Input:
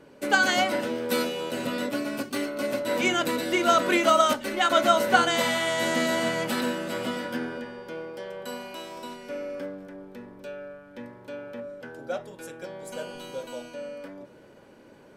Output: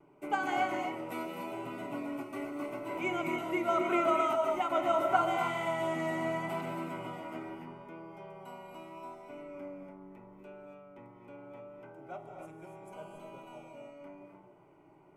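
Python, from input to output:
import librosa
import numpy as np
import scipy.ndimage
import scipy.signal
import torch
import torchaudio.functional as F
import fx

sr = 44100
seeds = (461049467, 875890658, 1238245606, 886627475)

y = fx.high_shelf_res(x, sr, hz=2900.0, db=-12.5, q=3.0)
y = fx.fixed_phaser(y, sr, hz=340.0, stages=8)
y = fx.rev_gated(y, sr, seeds[0], gate_ms=310, shape='rising', drr_db=2.5)
y = fx.vibrato(y, sr, rate_hz=0.78, depth_cents=20.0)
y = F.gain(torch.from_numpy(y), -6.5).numpy()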